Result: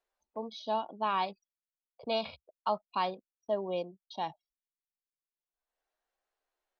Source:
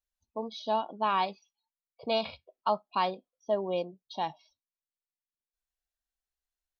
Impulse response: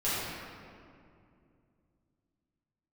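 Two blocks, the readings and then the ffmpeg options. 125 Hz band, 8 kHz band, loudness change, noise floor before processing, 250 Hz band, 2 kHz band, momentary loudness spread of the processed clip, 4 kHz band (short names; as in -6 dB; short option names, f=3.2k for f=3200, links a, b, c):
-3.0 dB, n/a, -3.0 dB, under -85 dBFS, -3.0 dB, -3.0 dB, 11 LU, -3.0 dB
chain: -filter_complex "[0:a]anlmdn=0.00158,acrossover=split=440[a][b];[b]acompressor=mode=upward:threshold=-48dB:ratio=2.5[c];[a][c]amix=inputs=2:normalize=0,volume=-3dB"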